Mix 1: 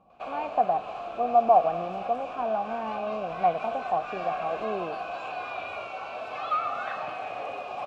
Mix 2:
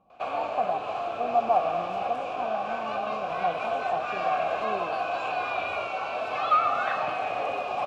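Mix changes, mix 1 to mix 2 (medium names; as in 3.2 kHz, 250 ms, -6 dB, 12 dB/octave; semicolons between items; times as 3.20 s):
speech -4.0 dB; background +5.5 dB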